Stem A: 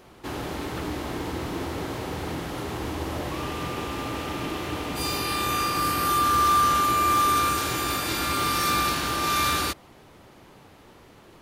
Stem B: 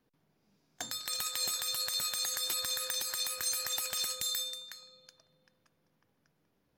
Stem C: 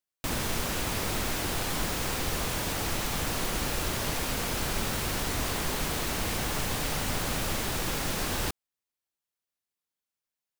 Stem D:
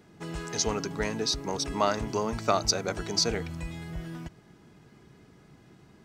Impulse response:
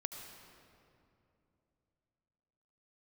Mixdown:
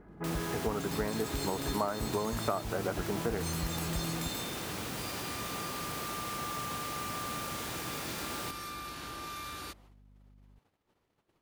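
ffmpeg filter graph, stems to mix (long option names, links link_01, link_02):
-filter_complex "[0:a]acompressor=threshold=-26dB:ratio=6,agate=range=-19dB:threshold=-48dB:ratio=16:detection=peak,volume=-12.5dB[link_01];[1:a]volume=-7.5dB,asplit=3[link_02][link_03][link_04];[link_02]atrim=end=2.64,asetpts=PTS-STARTPTS,afade=type=out:start_time=2.636:duration=0.004:curve=hsin[link_05];[link_03]atrim=start=2.64:end=3.37,asetpts=PTS-STARTPTS,volume=0[link_06];[link_04]atrim=start=3.37,asetpts=PTS-STARTPTS,afade=type=in:duration=0.004:curve=hsin[link_07];[link_05][link_06][link_07]concat=n=3:v=0:a=1[link_08];[2:a]highpass=frequency=100:width=0.5412,highpass=frequency=100:width=1.3066,aeval=exprs='val(0)+0.00355*(sin(2*PI*50*n/s)+sin(2*PI*2*50*n/s)/2+sin(2*PI*3*50*n/s)/3+sin(2*PI*4*50*n/s)/4+sin(2*PI*5*50*n/s)/5)':channel_layout=same,volume=-8.5dB[link_09];[3:a]lowpass=frequency=1700:width=0.5412,lowpass=frequency=1700:width=1.3066,volume=2dB[link_10];[link_01][link_08][link_09][link_10]amix=inputs=4:normalize=0,acompressor=threshold=-29dB:ratio=4"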